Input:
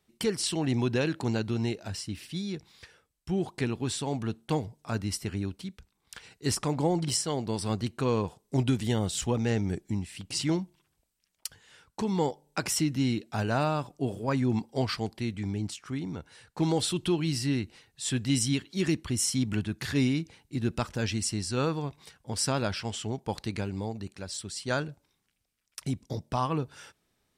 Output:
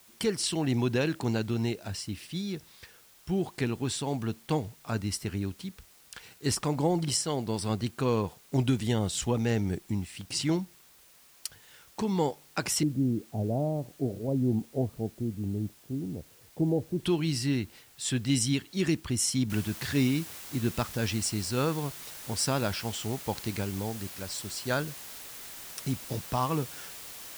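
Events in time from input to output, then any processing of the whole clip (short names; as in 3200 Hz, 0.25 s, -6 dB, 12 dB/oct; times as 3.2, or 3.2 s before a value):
12.83–17 steep low-pass 670 Hz
19.5 noise floor step -58 dB -44 dB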